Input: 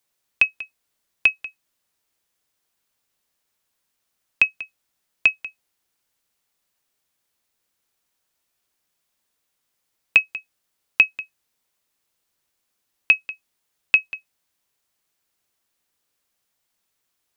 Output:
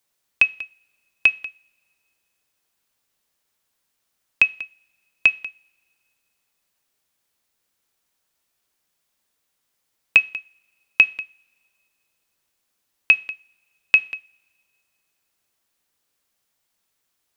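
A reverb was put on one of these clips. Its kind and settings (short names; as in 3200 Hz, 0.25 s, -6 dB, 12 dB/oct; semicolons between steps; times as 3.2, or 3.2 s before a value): two-slope reverb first 0.47 s, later 2.3 s, from -25 dB, DRR 17.5 dB; gain +1 dB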